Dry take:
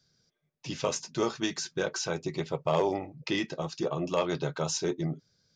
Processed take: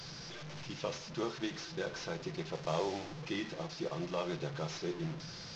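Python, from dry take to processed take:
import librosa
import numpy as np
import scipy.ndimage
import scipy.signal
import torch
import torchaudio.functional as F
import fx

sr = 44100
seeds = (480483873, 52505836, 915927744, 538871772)

y = fx.delta_mod(x, sr, bps=32000, step_db=-32.5)
y = fx.high_shelf(y, sr, hz=4000.0, db=8.5, at=(2.55, 3.22))
y = fx.room_shoebox(y, sr, seeds[0], volume_m3=2100.0, walls='furnished', distance_m=0.78)
y = y * 10.0 ** (-8.5 / 20.0)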